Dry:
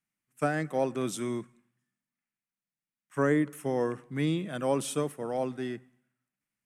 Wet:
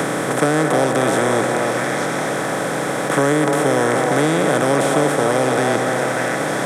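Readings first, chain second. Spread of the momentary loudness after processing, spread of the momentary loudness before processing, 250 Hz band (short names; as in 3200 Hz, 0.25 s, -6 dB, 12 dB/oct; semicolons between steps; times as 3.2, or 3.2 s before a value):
5 LU, 10 LU, +12.0 dB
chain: per-bin compression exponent 0.2; delay with a stepping band-pass 0.295 s, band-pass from 720 Hz, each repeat 1.4 oct, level -0.5 dB; three-band squash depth 70%; gain +5 dB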